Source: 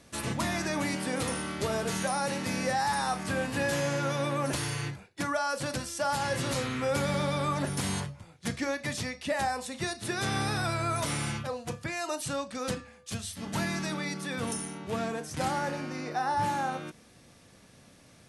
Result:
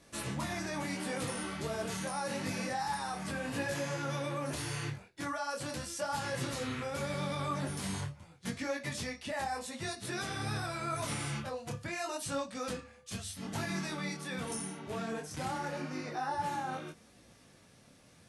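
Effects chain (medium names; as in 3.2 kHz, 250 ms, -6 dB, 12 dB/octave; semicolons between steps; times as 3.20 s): peak limiter -24 dBFS, peak gain reduction 4.5 dB; detune thickener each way 28 cents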